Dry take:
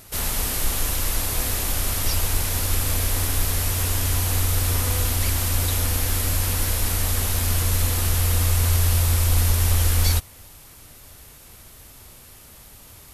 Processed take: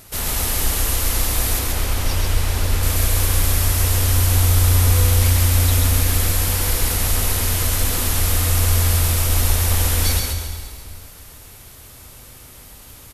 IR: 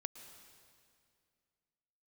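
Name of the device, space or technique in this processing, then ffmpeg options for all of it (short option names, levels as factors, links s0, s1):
stairwell: -filter_complex "[0:a]asettb=1/sr,asplit=3[s0][s1][s2];[s0]atrim=end=1.594[s3];[s1]atrim=start=1.59:end=2.83,asetpts=PTS-STARTPTS,afade=t=in:d=0.004:c=qsin,afade=t=out:st=1.236:d=0.004:c=qsin,highshelf=f=6000:g=-10[s4];[s2]atrim=start=2.826[s5];[s3][s4]acrossfade=d=0.004:c1=hsin:c2=qsin[s6];[s6][s5]acrossfade=d=0.004:c1=qsin:c2=hsin[s7];[1:a]atrim=start_sample=2205[s8];[s7][s8]afir=irnorm=-1:irlink=0,aecho=1:1:135|270|405|540|675:0.668|0.254|0.0965|0.0367|0.0139,volume=1.78"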